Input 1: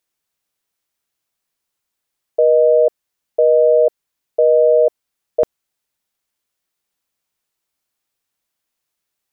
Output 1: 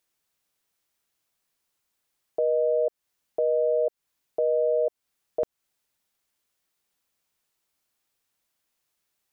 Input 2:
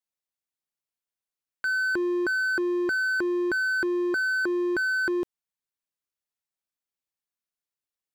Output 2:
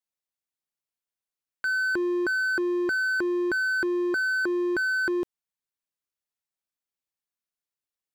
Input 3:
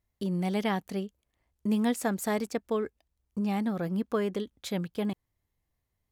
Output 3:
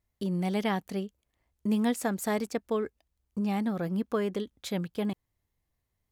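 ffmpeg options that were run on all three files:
ffmpeg -i in.wav -af "alimiter=limit=-17dB:level=0:latency=1:release=212" out.wav

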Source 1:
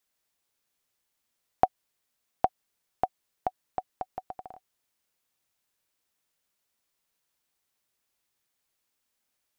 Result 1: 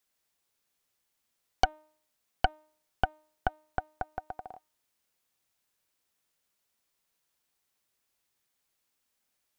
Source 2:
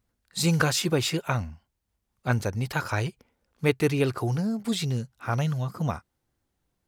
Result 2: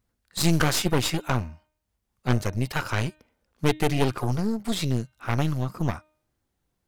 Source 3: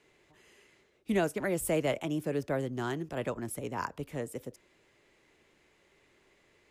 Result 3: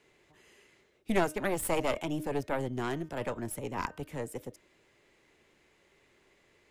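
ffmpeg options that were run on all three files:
ffmpeg -i in.wav -af "bandreject=frequency=307.7:width_type=h:width=4,bandreject=frequency=615.4:width_type=h:width=4,bandreject=frequency=923.1:width_type=h:width=4,bandreject=frequency=1230.8:width_type=h:width=4,bandreject=frequency=1538.5:width_type=h:width=4,bandreject=frequency=1846.2:width_type=h:width=4,bandreject=frequency=2153.9:width_type=h:width=4,bandreject=frequency=2461.6:width_type=h:width=4,bandreject=frequency=2769.3:width_type=h:width=4,bandreject=frequency=3077:width_type=h:width=4,bandreject=frequency=3384.7:width_type=h:width=4,bandreject=frequency=3692.4:width_type=h:width=4,bandreject=frequency=4000.1:width_type=h:width=4,aeval=exprs='0.501*(cos(1*acos(clip(val(0)/0.501,-1,1)))-cos(1*PI/2))+0.0631*(cos(5*acos(clip(val(0)/0.501,-1,1)))-cos(5*PI/2))+0.126*(cos(8*acos(clip(val(0)/0.501,-1,1)))-cos(8*PI/2))':channel_layout=same,volume=-4dB" out.wav

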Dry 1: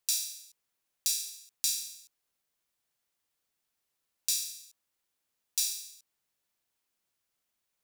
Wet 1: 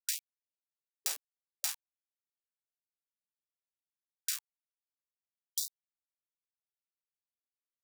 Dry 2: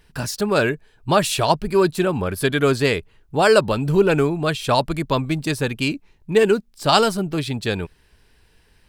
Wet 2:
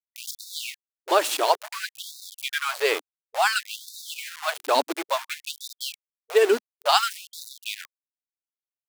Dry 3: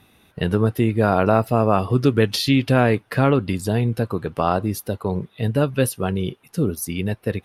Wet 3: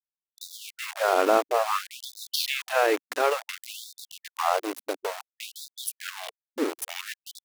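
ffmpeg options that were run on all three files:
ffmpeg -i in.wav -filter_complex "[0:a]asplit=2[link_01][link_02];[link_02]adelay=90,highpass=300,lowpass=3400,asoftclip=type=hard:threshold=-10dB,volume=-25dB[link_03];[link_01][link_03]amix=inputs=2:normalize=0,aeval=exprs='val(0)*gte(abs(val(0)),0.075)':channel_layout=same,afftfilt=real='re*gte(b*sr/1024,250*pow(3600/250,0.5+0.5*sin(2*PI*0.57*pts/sr)))':imag='im*gte(b*sr/1024,250*pow(3600/250,0.5+0.5*sin(2*PI*0.57*pts/sr)))':win_size=1024:overlap=0.75,volume=-2.5dB" out.wav

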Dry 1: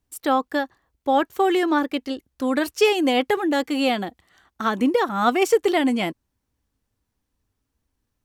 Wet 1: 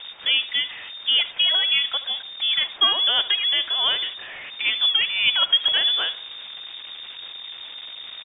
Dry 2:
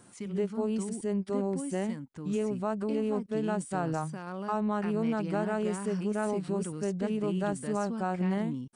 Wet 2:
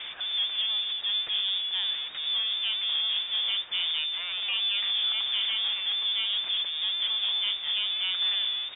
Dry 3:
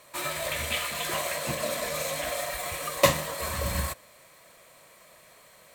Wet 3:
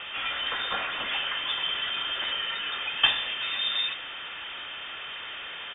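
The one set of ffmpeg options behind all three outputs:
ffmpeg -i in.wav -filter_complex "[0:a]aeval=exprs='val(0)+0.5*0.0398*sgn(val(0))':channel_layout=same,lowpass=frequency=3100:width_type=q:width=0.5098,lowpass=frequency=3100:width_type=q:width=0.6013,lowpass=frequency=3100:width_type=q:width=0.9,lowpass=frequency=3100:width_type=q:width=2.563,afreqshift=-3700,asplit=2[link_01][link_02];[link_02]adelay=75,lowpass=frequency=1900:poles=1,volume=-14dB,asplit=2[link_03][link_04];[link_04]adelay=75,lowpass=frequency=1900:poles=1,volume=0.52,asplit=2[link_05][link_06];[link_06]adelay=75,lowpass=frequency=1900:poles=1,volume=0.52,asplit=2[link_07][link_08];[link_08]adelay=75,lowpass=frequency=1900:poles=1,volume=0.52,asplit=2[link_09][link_10];[link_10]adelay=75,lowpass=frequency=1900:poles=1,volume=0.52[link_11];[link_01][link_03][link_05][link_07][link_09][link_11]amix=inputs=6:normalize=0,volume=-2dB" out.wav

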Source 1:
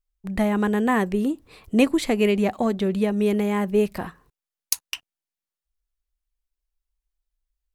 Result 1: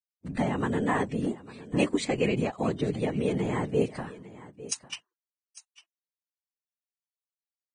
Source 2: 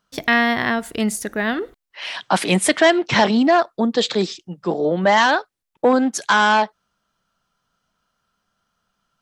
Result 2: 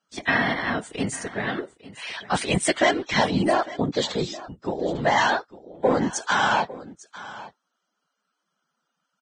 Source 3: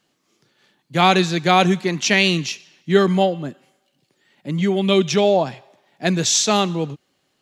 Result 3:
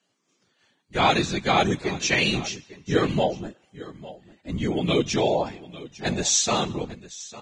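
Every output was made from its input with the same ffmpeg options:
ffmpeg -i in.wav -af "highpass=frequency=93:poles=1,afftfilt=real='hypot(re,im)*cos(2*PI*random(0))':imag='hypot(re,im)*sin(2*PI*random(1))':win_size=512:overlap=0.75,aecho=1:1:852:0.133" -ar 22050 -c:a libvorbis -b:a 16k out.ogg

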